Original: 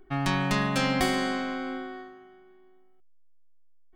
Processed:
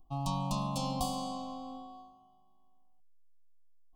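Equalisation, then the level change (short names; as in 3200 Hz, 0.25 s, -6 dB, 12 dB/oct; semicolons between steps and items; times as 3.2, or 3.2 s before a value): elliptic band-stop 1100–2400 Hz, stop band 50 dB; fixed phaser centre 930 Hz, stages 4; -3.5 dB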